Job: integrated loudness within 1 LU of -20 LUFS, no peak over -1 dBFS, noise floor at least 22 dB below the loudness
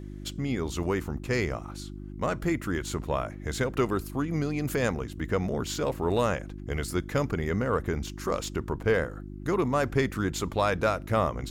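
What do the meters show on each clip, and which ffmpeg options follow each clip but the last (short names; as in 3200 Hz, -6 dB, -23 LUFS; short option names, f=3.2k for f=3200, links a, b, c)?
hum 50 Hz; harmonics up to 350 Hz; hum level -38 dBFS; loudness -29.5 LUFS; peak -11.5 dBFS; loudness target -20.0 LUFS
-> -af "bandreject=f=50:t=h:w=4,bandreject=f=100:t=h:w=4,bandreject=f=150:t=h:w=4,bandreject=f=200:t=h:w=4,bandreject=f=250:t=h:w=4,bandreject=f=300:t=h:w=4,bandreject=f=350:t=h:w=4"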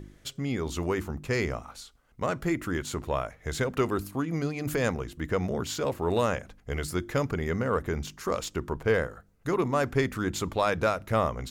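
hum none; loudness -30.0 LUFS; peak -11.5 dBFS; loudness target -20.0 LUFS
-> -af "volume=10dB"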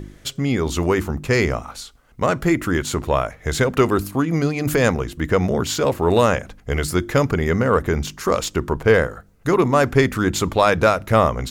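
loudness -20.0 LUFS; peak -1.5 dBFS; noise floor -49 dBFS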